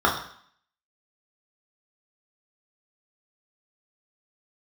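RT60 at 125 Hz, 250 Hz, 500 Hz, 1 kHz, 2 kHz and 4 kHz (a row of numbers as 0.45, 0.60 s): 0.50, 0.60, 0.55, 0.65, 0.65, 0.65 s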